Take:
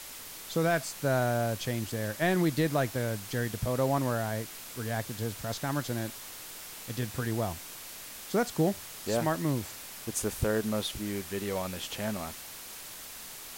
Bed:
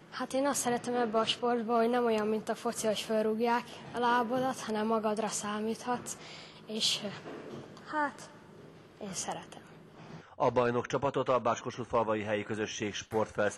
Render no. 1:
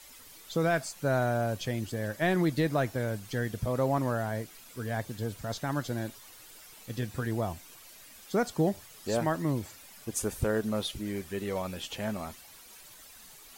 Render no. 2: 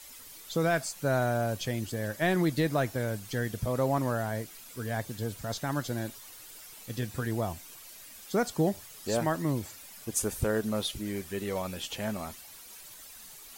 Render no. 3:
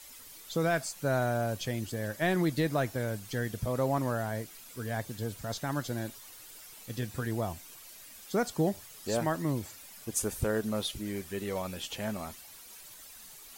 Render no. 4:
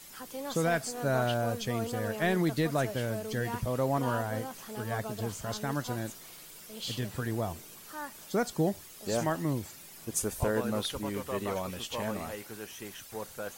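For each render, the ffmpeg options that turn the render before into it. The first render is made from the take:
ffmpeg -i in.wav -af "afftdn=noise_reduction=11:noise_floor=-45" out.wav
ffmpeg -i in.wav -af "highshelf=frequency=4700:gain=4.5" out.wav
ffmpeg -i in.wav -af "volume=-1.5dB" out.wav
ffmpeg -i in.wav -i bed.wav -filter_complex "[1:a]volume=-9dB[link_01];[0:a][link_01]amix=inputs=2:normalize=0" out.wav

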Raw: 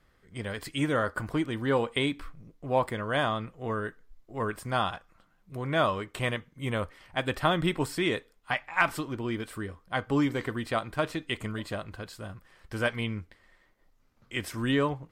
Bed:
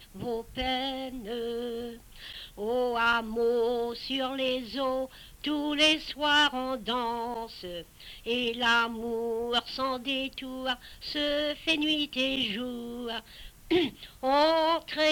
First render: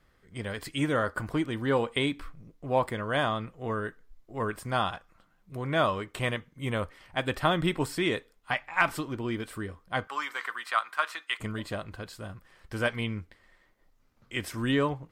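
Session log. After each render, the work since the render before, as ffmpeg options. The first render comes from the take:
ffmpeg -i in.wav -filter_complex "[0:a]asettb=1/sr,asplit=3[link_01][link_02][link_03];[link_01]atrim=end=10.074[link_04];[link_02]atrim=start=10.07:end=11.4,asetpts=PTS-STARTPTS,afade=type=in:duration=0.004:curve=qsin,afade=type=out:start_time=1.326:duration=0.004:curve=qsin,highpass=frequency=1200:width_type=q:width=2.2[link_05];[link_03]atrim=start=11.396[link_06];[link_04][link_05]acrossfade=duration=0.004:curve1=hsin:curve2=qsin[link_07];[link_07][link_06]acrossfade=duration=0.004:curve1=qsin:curve2=hsin" out.wav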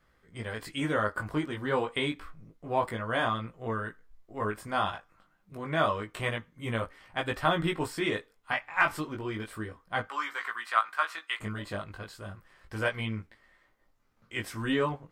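ffmpeg -i in.wav -filter_complex "[0:a]flanger=delay=17.5:depth=2.5:speed=0.29,acrossover=split=1700[link_01][link_02];[link_01]crystalizer=i=7:c=0[link_03];[link_03][link_02]amix=inputs=2:normalize=0" out.wav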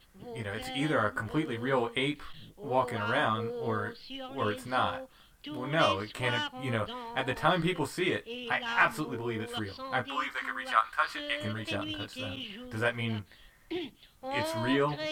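ffmpeg -i in.wav -i bed.wav -filter_complex "[1:a]volume=-11dB[link_01];[0:a][link_01]amix=inputs=2:normalize=0" out.wav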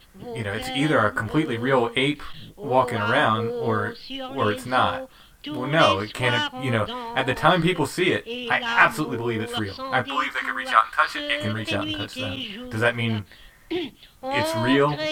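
ffmpeg -i in.wav -af "volume=8.5dB" out.wav

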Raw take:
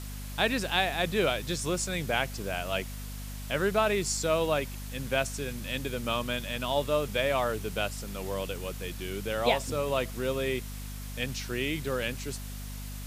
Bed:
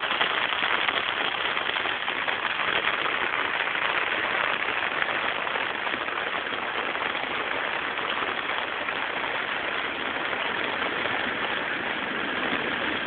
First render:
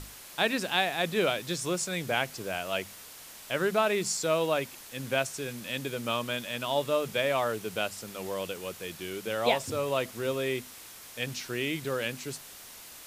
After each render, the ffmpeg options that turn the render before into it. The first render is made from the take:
ffmpeg -i in.wav -af "bandreject=frequency=50:width_type=h:width=6,bandreject=frequency=100:width_type=h:width=6,bandreject=frequency=150:width_type=h:width=6,bandreject=frequency=200:width_type=h:width=6,bandreject=frequency=250:width_type=h:width=6" out.wav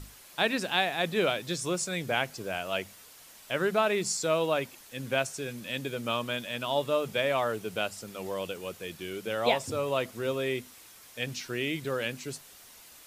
ffmpeg -i in.wav -af "afftdn=noise_reduction=6:noise_floor=-48" out.wav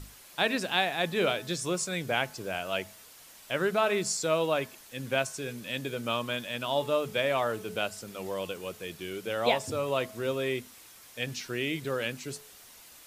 ffmpeg -i in.wav -af "bandreject=frequency=215.2:width_type=h:width=4,bandreject=frequency=430.4:width_type=h:width=4,bandreject=frequency=645.6:width_type=h:width=4,bandreject=frequency=860.8:width_type=h:width=4,bandreject=frequency=1076:width_type=h:width=4,bandreject=frequency=1291.2:width_type=h:width=4,bandreject=frequency=1506.4:width_type=h:width=4,bandreject=frequency=1721.6:width_type=h:width=4" out.wav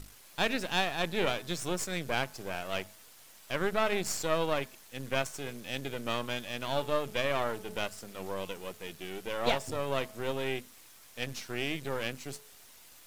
ffmpeg -i in.wav -af "aeval=exprs='if(lt(val(0),0),0.251*val(0),val(0))':channel_layout=same" out.wav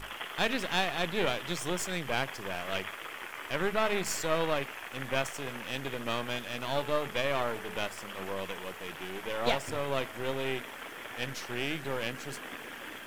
ffmpeg -i in.wav -i bed.wav -filter_complex "[1:a]volume=-16dB[link_01];[0:a][link_01]amix=inputs=2:normalize=0" out.wav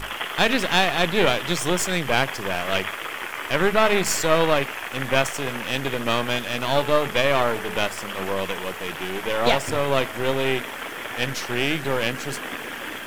ffmpeg -i in.wav -af "volume=10.5dB,alimiter=limit=-3dB:level=0:latency=1" out.wav

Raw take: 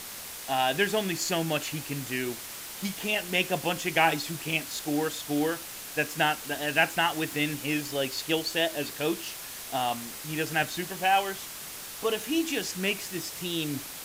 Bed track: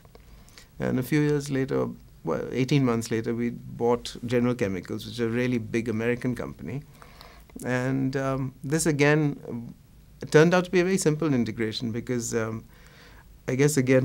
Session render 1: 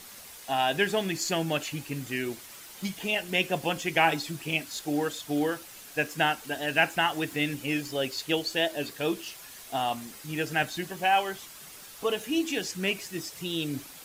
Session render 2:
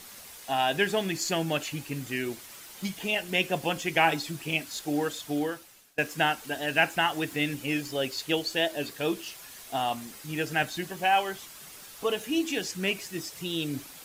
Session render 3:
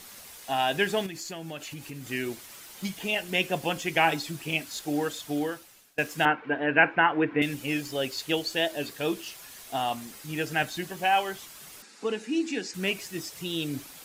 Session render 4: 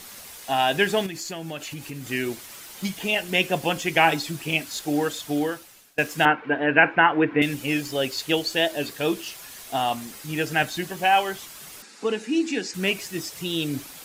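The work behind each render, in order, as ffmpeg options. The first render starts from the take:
ffmpeg -i in.wav -af "afftdn=noise_reduction=8:noise_floor=-41" out.wav
ffmpeg -i in.wav -filter_complex "[0:a]asplit=2[link_01][link_02];[link_01]atrim=end=5.98,asetpts=PTS-STARTPTS,afade=type=out:start_time=5.25:duration=0.73:silence=0.0668344[link_03];[link_02]atrim=start=5.98,asetpts=PTS-STARTPTS,afade=type=in:duration=0.004:curve=hsin:silence=0.0668344[link_04];[link_03][link_04]concat=n=2:v=0:a=1" out.wav
ffmpeg -i in.wav -filter_complex "[0:a]asettb=1/sr,asplit=3[link_01][link_02][link_03];[link_01]atrim=end=1.064[link_04];[link_02]atrim=start=1.06:end=2.08,asetpts=PTS-STARTPTS,afade=type=in:duration=0.004:curve=qsin,afade=type=out:start_time=1.016:duration=0.004:curve=qsin,acompressor=threshold=-37dB:ratio=3:attack=3.2:release=140:knee=1:detection=peak[link_05];[link_03]atrim=start=2.076[link_06];[link_04][link_05]acrossfade=duration=0.004:curve1=hsin:curve2=qsin[link_07];[link_07][link_06]acrossfade=duration=0.004:curve1=qsin:curve2=hsin,asettb=1/sr,asplit=3[link_08][link_09][link_10];[link_08]atrim=end=6.254[link_11];[link_09]atrim=start=6.25:end=7.42,asetpts=PTS-STARTPTS,afade=type=in:duration=0.004:curve=qsin,afade=type=out:start_time=1.166:duration=0.004:curve=qsin,highpass=120,equalizer=frequency=140:width_type=q:width=4:gain=4,equalizer=frequency=300:width_type=q:width=4:gain=7,equalizer=frequency=470:width_type=q:width=4:gain=8,equalizer=frequency=1000:width_type=q:width=4:gain=7,equalizer=frequency=1500:width_type=q:width=4:gain=6,equalizer=frequency=2300:width_type=q:width=4:gain=5,lowpass=frequency=2400:width=0.5412,lowpass=frequency=2400:width=1.3066[link_12];[link_10]atrim=start=7.416[link_13];[link_11][link_12]acrossfade=duration=0.004:curve1=hsin:curve2=qsin[link_14];[link_14][link_13]acrossfade=duration=0.004:curve1=qsin:curve2=hsin,asettb=1/sr,asplit=3[link_15][link_16][link_17];[link_15]atrim=end=11.824[link_18];[link_16]atrim=start=11.82:end=12.74,asetpts=PTS-STARTPTS,afade=type=in:duration=0.004:curve=qsin,afade=type=out:start_time=0.916:duration=0.004:curve=qsin,highpass=frequency=210:width=0.5412,highpass=frequency=210:width=1.3066,equalizer=frequency=220:width_type=q:width=4:gain=8,equalizer=frequency=630:width_type=q:width=4:gain=-10,equalizer=frequency=1100:width_type=q:width=4:gain=-6,equalizer=frequency=3200:width_type=q:width=4:gain=-10,equalizer=frequency=6100:width_type=q:width=4:gain=-4,lowpass=frequency=7700:width=0.5412,lowpass=frequency=7700:width=1.3066[link_19];[link_17]atrim=start=12.736[link_20];[link_18][link_19]acrossfade=duration=0.004:curve1=hsin:curve2=qsin[link_21];[link_21][link_20]acrossfade=duration=0.004:curve1=qsin:curve2=hsin" out.wav
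ffmpeg -i in.wav -af "volume=4.5dB,alimiter=limit=-3dB:level=0:latency=1" out.wav

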